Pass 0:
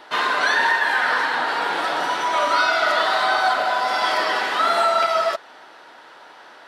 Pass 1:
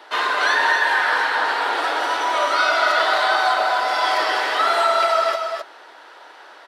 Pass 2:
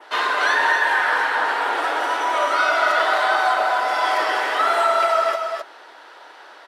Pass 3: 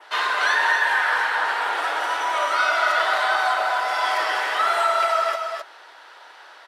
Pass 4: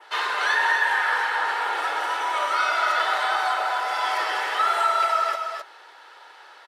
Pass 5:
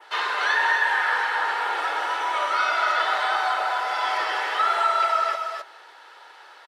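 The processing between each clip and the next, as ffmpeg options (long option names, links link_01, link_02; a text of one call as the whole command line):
ffmpeg -i in.wav -filter_complex "[0:a]highpass=frequency=300:width=0.5412,highpass=frequency=300:width=1.3066,asplit=2[link_01][link_02];[link_02]aecho=0:1:261:0.531[link_03];[link_01][link_03]amix=inputs=2:normalize=0" out.wav
ffmpeg -i in.wav -af "bandreject=frequency=50:width_type=h:width=6,bandreject=frequency=100:width_type=h:width=6,bandreject=frequency=150:width_type=h:width=6,adynamicequalizer=threshold=0.00891:dfrequency=4300:dqfactor=1.8:tfrequency=4300:tqfactor=1.8:attack=5:release=100:ratio=0.375:range=3.5:mode=cutabove:tftype=bell" out.wav
ffmpeg -i in.wav -af "highpass=frequency=850:poles=1" out.wav
ffmpeg -i in.wav -af "aecho=1:1:2.3:0.34,volume=-2.5dB" out.wav
ffmpeg -i in.wav -filter_complex "[0:a]asplit=2[link_01][link_02];[link_02]adelay=210,highpass=300,lowpass=3400,asoftclip=type=hard:threshold=-19dB,volume=-25dB[link_03];[link_01][link_03]amix=inputs=2:normalize=0,acrossover=split=6500[link_04][link_05];[link_05]acompressor=threshold=-54dB:ratio=4:attack=1:release=60[link_06];[link_04][link_06]amix=inputs=2:normalize=0" out.wav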